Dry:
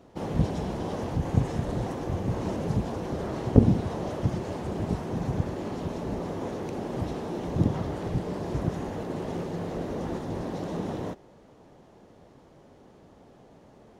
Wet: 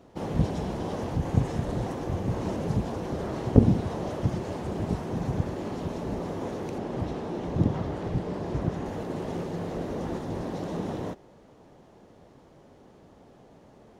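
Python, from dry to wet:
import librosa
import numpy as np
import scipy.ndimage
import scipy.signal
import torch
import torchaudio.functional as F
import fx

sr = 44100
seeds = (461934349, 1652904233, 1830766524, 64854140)

y = fx.high_shelf(x, sr, hz=7300.0, db=-9.5, at=(6.78, 8.86))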